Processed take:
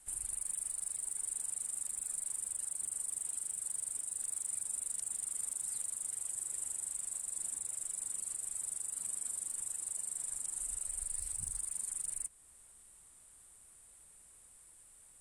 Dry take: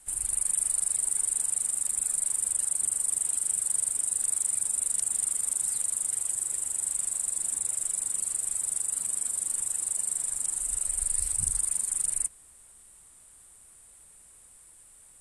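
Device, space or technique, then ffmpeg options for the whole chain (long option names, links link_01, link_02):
soft clipper into limiter: -af "asoftclip=type=tanh:threshold=-14dB,alimiter=limit=-22dB:level=0:latency=1:release=286,volume=-5.5dB"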